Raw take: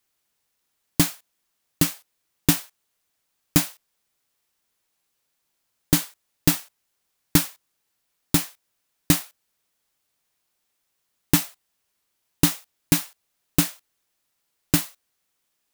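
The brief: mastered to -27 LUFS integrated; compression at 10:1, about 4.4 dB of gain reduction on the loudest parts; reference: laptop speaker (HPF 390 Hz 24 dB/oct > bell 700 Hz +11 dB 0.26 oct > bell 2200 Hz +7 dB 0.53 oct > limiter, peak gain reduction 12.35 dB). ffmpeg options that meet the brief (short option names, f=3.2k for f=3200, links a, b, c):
-af "acompressor=threshold=-17dB:ratio=10,highpass=f=390:w=0.5412,highpass=f=390:w=1.3066,equalizer=f=700:t=o:w=0.26:g=11,equalizer=f=2.2k:t=o:w=0.53:g=7,volume=7dB,alimiter=limit=-10dB:level=0:latency=1"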